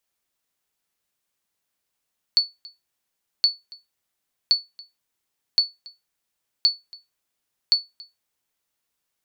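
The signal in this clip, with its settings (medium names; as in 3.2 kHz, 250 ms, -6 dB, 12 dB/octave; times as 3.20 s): sonar ping 4.45 kHz, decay 0.20 s, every 1.07 s, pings 6, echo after 0.28 s, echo -24 dB -9 dBFS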